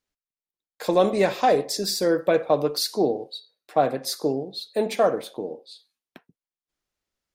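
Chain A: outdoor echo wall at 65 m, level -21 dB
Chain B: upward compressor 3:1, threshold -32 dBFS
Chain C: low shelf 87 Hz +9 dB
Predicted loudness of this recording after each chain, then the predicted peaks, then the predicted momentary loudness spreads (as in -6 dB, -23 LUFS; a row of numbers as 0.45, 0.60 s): -23.5, -24.0, -23.5 LUFS; -8.0, -8.0, -7.5 dBFS; 12, 14, 13 LU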